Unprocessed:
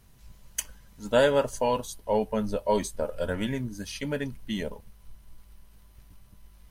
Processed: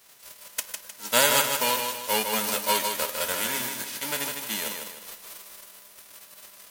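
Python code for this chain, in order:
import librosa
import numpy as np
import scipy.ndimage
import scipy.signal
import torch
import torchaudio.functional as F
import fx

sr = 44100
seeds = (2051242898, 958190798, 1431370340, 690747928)

y = fx.envelope_flatten(x, sr, power=0.3)
y = fx.highpass(y, sr, hz=440.0, slope=6)
y = fx.echo_feedback(y, sr, ms=154, feedback_pct=42, wet_db=-5.5)
y = y * 10.0 ** (1.0 / 20.0)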